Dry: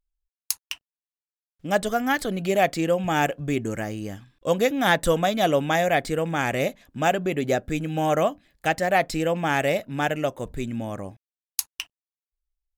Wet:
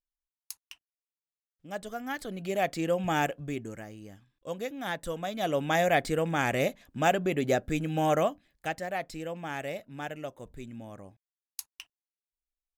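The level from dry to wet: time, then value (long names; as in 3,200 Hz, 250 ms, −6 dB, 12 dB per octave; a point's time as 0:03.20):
0:01.68 −15.5 dB
0:03.10 −4 dB
0:03.88 −14 dB
0:05.14 −14 dB
0:05.81 −3 dB
0:08.10 −3 dB
0:08.96 −13 dB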